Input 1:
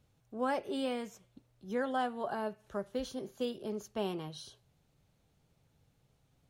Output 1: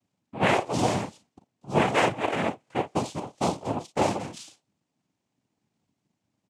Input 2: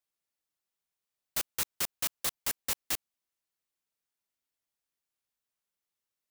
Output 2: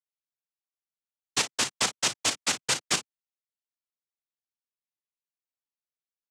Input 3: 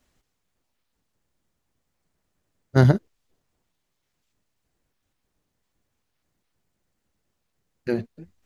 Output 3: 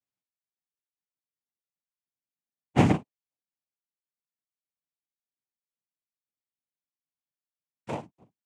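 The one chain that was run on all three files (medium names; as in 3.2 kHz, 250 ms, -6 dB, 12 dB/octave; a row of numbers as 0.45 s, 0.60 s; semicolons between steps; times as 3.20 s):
power-law waveshaper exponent 1.4; early reflections 37 ms -10 dB, 54 ms -16 dB; noise-vocoded speech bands 4; normalise loudness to -27 LUFS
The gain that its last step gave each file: +13.0 dB, +14.0 dB, -2.5 dB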